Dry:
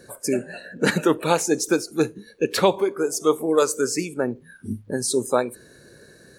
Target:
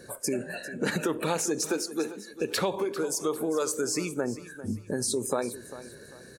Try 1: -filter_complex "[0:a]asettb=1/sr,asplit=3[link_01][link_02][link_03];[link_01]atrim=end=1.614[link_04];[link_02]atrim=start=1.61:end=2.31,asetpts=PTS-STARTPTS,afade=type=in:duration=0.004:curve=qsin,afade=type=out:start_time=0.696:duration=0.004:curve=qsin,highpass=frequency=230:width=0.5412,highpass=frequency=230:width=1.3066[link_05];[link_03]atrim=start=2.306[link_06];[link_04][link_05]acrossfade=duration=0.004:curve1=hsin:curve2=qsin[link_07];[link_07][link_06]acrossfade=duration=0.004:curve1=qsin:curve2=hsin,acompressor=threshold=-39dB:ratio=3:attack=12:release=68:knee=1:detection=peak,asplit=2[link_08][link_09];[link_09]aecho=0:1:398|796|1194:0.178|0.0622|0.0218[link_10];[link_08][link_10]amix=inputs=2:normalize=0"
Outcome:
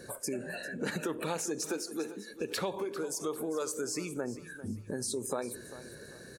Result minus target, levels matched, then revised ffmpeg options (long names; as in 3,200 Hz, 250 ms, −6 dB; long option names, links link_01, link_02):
downward compressor: peak gain reduction +6.5 dB
-filter_complex "[0:a]asettb=1/sr,asplit=3[link_01][link_02][link_03];[link_01]atrim=end=1.614[link_04];[link_02]atrim=start=1.61:end=2.31,asetpts=PTS-STARTPTS,afade=type=in:duration=0.004:curve=qsin,afade=type=out:start_time=0.696:duration=0.004:curve=qsin,highpass=frequency=230:width=0.5412,highpass=frequency=230:width=1.3066[link_05];[link_03]atrim=start=2.306[link_06];[link_04][link_05]acrossfade=duration=0.004:curve1=hsin:curve2=qsin[link_07];[link_07][link_06]acrossfade=duration=0.004:curve1=qsin:curve2=hsin,acompressor=threshold=-29.5dB:ratio=3:attack=12:release=68:knee=1:detection=peak,asplit=2[link_08][link_09];[link_09]aecho=0:1:398|796|1194:0.178|0.0622|0.0218[link_10];[link_08][link_10]amix=inputs=2:normalize=0"